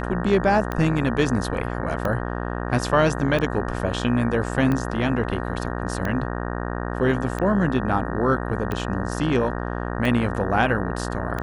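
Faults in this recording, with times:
buzz 60 Hz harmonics 31 -28 dBFS
tick 45 rpm -14 dBFS

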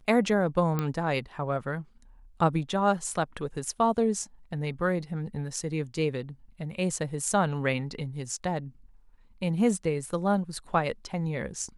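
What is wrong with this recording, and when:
0.79 pop -15 dBFS

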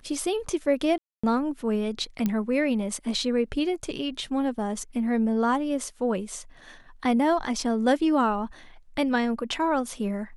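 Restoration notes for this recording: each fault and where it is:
0.98–1.24 gap 0.255 s
2.26 pop -13 dBFS

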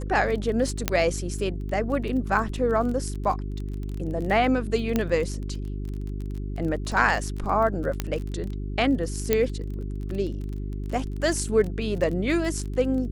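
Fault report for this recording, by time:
crackle 22/s -31 dBFS
hum 50 Hz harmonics 8 -31 dBFS
0.88 pop -5 dBFS
4.96 pop -10 dBFS
8 pop -11 dBFS
9.33 pop -7 dBFS

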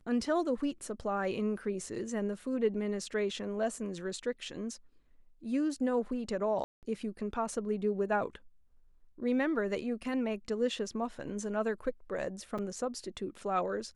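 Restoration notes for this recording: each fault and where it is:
6.64–6.83 gap 0.188 s
12.58–12.59 gap 5.5 ms

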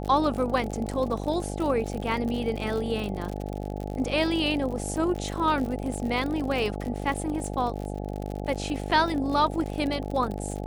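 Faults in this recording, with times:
buzz 50 Hz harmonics 17 -33 dBFS
crackle 57/s -31 dBFS

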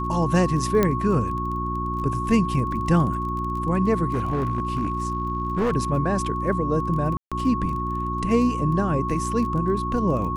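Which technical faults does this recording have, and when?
crackle 16/s -31 dBFS
hum 60 Hz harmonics 6 -29 dBFS
tone 1100 Hz -27 dBFS
0.83 pop -7 dBFS
4.13–5.72 clipped -18.5 dBFS
7.17–7.32 gap 0.146 s

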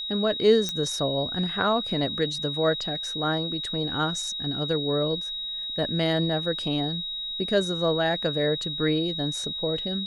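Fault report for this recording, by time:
tone 3800 Hz -30 dBFS
0.69 pop -13 dBFS

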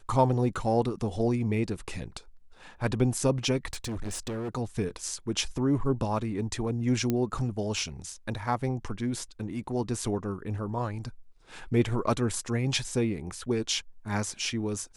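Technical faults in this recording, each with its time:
3.73–4.49 clipped -30.5 dBFS
7.1 pop -14 dBFS

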